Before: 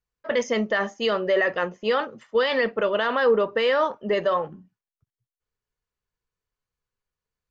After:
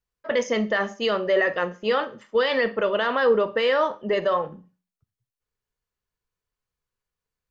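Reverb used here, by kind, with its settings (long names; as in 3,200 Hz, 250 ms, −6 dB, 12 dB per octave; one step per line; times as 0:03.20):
four-comb reverb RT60 0.34 s, combs from 30 ms, DRR 14.5 dB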